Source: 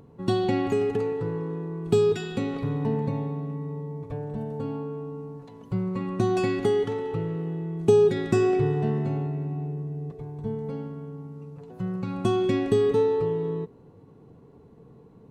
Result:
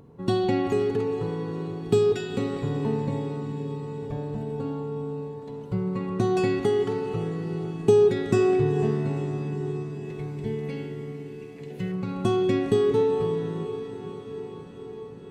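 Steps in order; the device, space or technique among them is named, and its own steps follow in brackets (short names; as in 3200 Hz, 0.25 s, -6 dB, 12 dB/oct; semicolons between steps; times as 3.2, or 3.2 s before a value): 10.05–11.92 resonant high shelf 1600 Hz +9 dB, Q 3; diffused feedback echo 0.484 s, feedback 71%, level -12 dB; compressed reverb return (on a send at -7 dB: reverb RT60 1.1 s, pre-delay 48 ms + compressor, threshold -32 dBFS, peak gain reduction 17.5 dB)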